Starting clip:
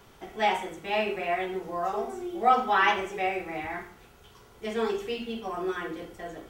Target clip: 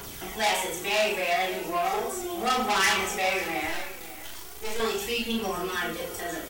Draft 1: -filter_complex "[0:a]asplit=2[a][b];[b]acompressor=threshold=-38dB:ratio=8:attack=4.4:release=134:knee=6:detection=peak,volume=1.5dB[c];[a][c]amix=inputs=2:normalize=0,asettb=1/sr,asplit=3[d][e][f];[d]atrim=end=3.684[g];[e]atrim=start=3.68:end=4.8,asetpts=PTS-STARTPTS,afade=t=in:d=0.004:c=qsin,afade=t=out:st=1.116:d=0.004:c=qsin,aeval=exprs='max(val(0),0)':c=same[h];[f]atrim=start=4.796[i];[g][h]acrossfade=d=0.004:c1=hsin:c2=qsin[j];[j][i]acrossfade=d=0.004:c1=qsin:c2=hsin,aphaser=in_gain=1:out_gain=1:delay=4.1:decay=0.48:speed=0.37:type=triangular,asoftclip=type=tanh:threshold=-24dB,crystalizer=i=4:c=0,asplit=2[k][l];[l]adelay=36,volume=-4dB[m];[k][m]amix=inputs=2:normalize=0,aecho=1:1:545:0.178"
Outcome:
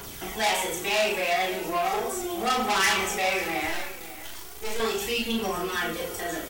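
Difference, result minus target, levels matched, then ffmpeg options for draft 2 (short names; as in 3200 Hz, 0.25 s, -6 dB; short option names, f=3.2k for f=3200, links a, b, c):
compressor: peak gain reduction -7 dB
-filter_complex "[0:a]asplit=2[a][b];[b]acompressor=threshold=-46dB:ratio=8:attack=4.4:release=134:knee=6:detection=peak,volume=1.5dB[c];[a][c]amix=inputs=2:normalize=0,asettb=1/sr,asplit=3[d][e][f];[d]atrim=end=3.684[g];[e]atrim=start=3.68:end=4.8,asetpts=PTS-STARTPTS,afade=t=in:d=0.004:c=qsin,afade=t=out:st=1.116:d=0.004:c=qsin,aeval=exprs='max(val(0),0)':c=same[h];[f]atrim=start=4.796[i];[g][h]acrossfade=d=0.004:c1=hsin:c2=qsin[j];[j][i]acrossfade=d=0.004:c1=qsin:c2=hsin,aphaser=in_gain=1:out_gain=1:delay=4.1:decay=0.48:speed=0.37:type=triangular,asoftclip=type=tanh:threshold=-24dB,crystalizer=i=4:c=0,asplit=2[k][l];[l]adelay=36,volume=-4dB[m];[k][m]amix=inputs=2:normalize=0,aecho=1:1:545:0.178"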